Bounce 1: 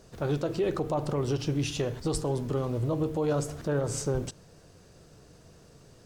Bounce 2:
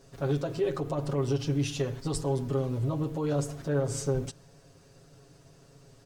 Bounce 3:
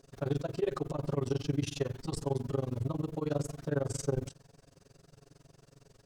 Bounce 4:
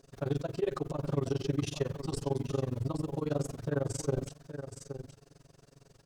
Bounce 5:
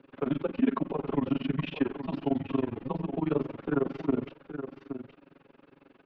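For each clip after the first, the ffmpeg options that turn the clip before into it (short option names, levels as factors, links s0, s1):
-af "aecho=1:1:7.3:0.86,volume=0.631"
-af "tremolo=f=22:d=0.974"
-af "aecho=1:1:821:0.316"
-af "highpass=f=320:t=q:w=0.5412,highpass=f=320:t=q:w=1.307,lowpass=f=3100:t=q:w=0.5176,lowpass=f=3100:t=q:w=0.7071,lowpass=f=3100:t=q:w=1.932,afreqshift=-140,volume=2.24"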